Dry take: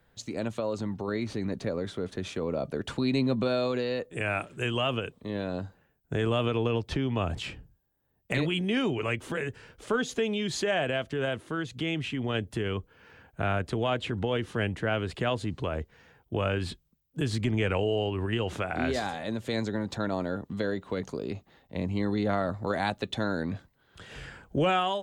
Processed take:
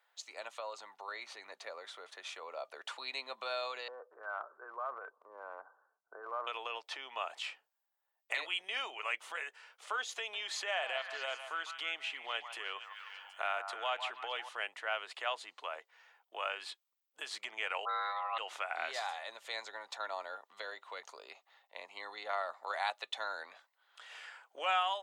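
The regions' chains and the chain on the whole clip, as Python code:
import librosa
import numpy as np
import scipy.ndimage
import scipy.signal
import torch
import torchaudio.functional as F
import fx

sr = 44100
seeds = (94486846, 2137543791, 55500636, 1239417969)

y = fx.chain(x, sr, fx.cheby_ripple(hz=1600.0, ripple_db=6),
    fx.transient(attack_db=1, sustain_db=9), at=(3.88, 6.47))
y = fx.chain(y, sr, fx.echo_stepped(ms=154, hz=970.0, octaves=0.7, feedback_pct=70, wet_db=-6.5),
    fx.band_squash(depth_pct=40), at=(10.12, 14.49))
y = fx.chain(y, sr, fx.dispersion(late='highs', ms=42.0, hz=540.0),
    fx.ring_mod(carrier_hz=910.0),
    fx.brickwall_lowpass(high_hz=5000.0), at=(17.85, 18.38))
y = scipy.signal.sosfilt(scipy.signal.butter(4, 760.0, 'highpass', fs=sr, output='sos'), y)
y = fx.high_shelf(y, sr, hz=6700.0, db=-5.5)
y = fx.notch(y, sr, hz=1600.0, q=14.0)
y = y * 10.0 ** (-2.5 / 20.0)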